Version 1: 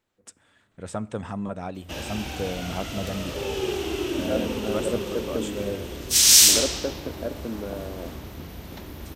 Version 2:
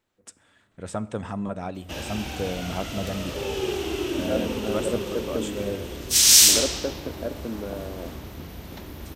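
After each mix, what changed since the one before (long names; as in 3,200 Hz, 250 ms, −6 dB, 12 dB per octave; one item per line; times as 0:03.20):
first voice: send +6.0 dB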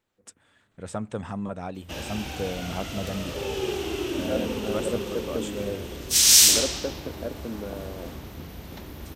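reverb: off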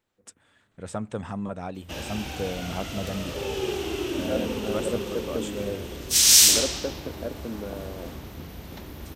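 nothing changed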